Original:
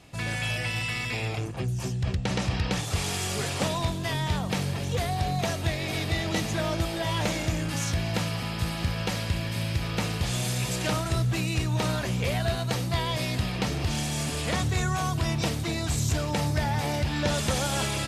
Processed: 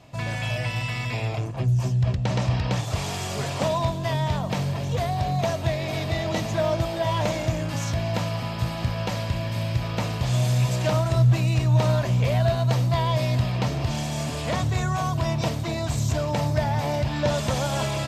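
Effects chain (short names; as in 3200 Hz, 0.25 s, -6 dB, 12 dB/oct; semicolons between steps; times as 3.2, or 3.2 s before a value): thirty-one-band EQ 125 Hz +11 dB, 250 Hz +4 dB, 630 Hz +10 dB, 1000 Hz +7 dB, 10000 Hz -10 dB; gain -1.5 dB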